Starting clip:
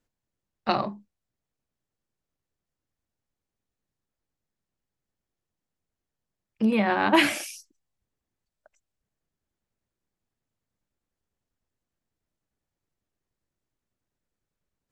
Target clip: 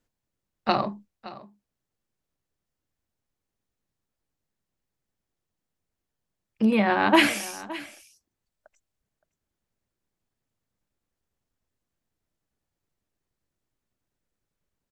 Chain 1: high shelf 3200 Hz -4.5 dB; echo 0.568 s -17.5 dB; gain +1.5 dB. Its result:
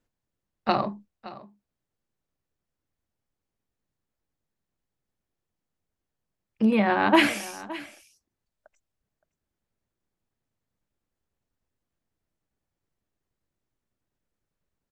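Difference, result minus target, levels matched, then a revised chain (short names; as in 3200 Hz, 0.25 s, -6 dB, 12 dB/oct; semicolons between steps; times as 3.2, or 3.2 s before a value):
8000 Hz band -3.5 dB
echo 0.568 s -17.5 dB; gain +1.5 dB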